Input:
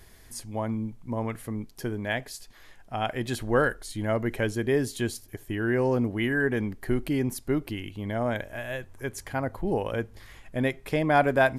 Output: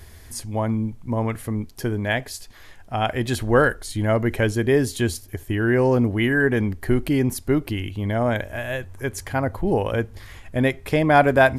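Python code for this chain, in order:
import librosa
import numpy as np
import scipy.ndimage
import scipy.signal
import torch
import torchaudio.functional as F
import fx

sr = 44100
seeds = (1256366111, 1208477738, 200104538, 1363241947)

y = fx.peak_eq(x, sr, hz=82.0, db=12.5, octaves=0.41)
y = y * librosa.db_to_amplitude(6.0)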